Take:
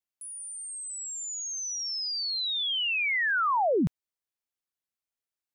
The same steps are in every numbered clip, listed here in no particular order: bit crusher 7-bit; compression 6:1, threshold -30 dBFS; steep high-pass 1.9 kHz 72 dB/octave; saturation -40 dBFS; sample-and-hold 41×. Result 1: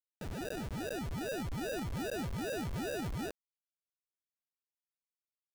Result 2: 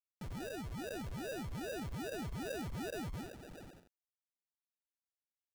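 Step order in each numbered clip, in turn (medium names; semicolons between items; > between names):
steep high-pass > sample-and-hold > compression > saturation > bit crusher; bit crusher > compression > saturation > steep high-pass > sample-and-hold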